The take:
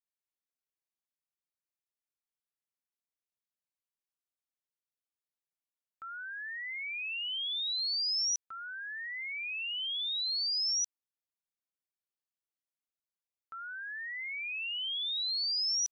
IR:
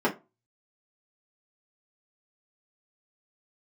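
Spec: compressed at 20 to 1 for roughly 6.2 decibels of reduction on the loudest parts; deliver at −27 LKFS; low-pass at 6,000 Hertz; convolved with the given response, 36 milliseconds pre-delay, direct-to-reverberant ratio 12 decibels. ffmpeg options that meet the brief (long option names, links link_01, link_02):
-filter_complex "[0:a]lowpass=6000,acompressor=threshold=-38dB:ratio=20,asplit=2[link_01][link_02];[1:a]atrim=start_sample=2205,adelay=36[link_03];[link_02][link_03]afir=irnorm=-1:irlink=0,volume=-25.5dB[link_04];[link_01][link_04]amix=inputs=2:normalize=0,volume=11dB"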